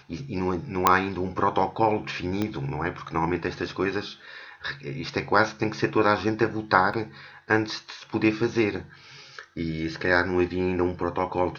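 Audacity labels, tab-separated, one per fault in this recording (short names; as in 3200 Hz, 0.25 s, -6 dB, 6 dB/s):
0.870000	0.870000	pop -2 dBFS
2.420000	2.420000	pop -14 dBFS
6.930000	6.940000	gap 5.5 ms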